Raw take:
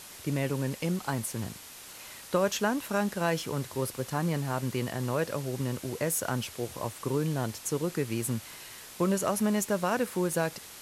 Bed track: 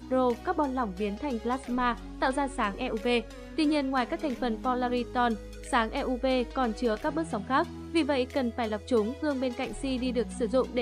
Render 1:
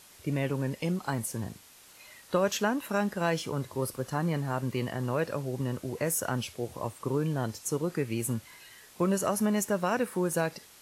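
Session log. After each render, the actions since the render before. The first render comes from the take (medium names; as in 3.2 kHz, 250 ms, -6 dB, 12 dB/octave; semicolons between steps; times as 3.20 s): noise print and reduce 8 dB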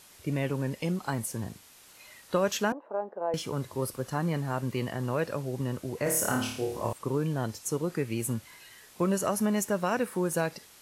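2.72–3.34 s: Butterworth band-pass 600 Hz, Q 1.2; 6.03–6.93 s: flutter echo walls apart 4.7 m, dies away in 0.58 s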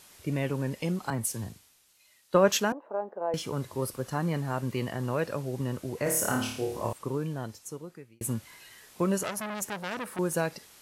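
1.10–2.60 s: three bands expanded up and down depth 70%; 6.81–8.21 s: fade out; 9.23–10.19 s: transformer saturation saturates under 3 kHz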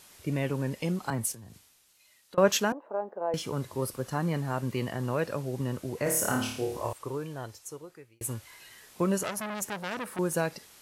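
1.32–2.38 s: compression 16:1, threshold -43 dBFS; 6.77–8.60 s: peaking EQ 200 Hz -13.5 dB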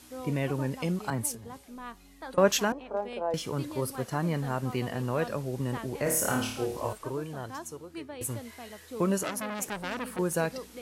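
add bed track -15 dB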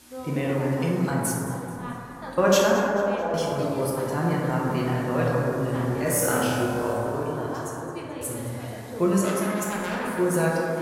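thinning echo 217 ms, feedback 47%, level -16 dB; plate-style reverb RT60 3 s, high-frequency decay 0.25×, DRR -4.5 dB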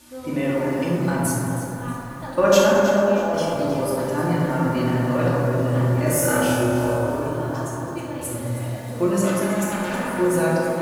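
simulated room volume 1900 m³, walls furnished, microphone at 2.5 m; bit-crushed delay 318 ms, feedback 35%, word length 7-bit, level -11 dB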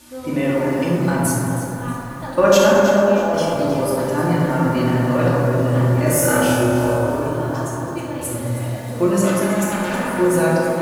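trim +3.5 dB; peak limiter -2 dBFS, peak gain reduction 3 dB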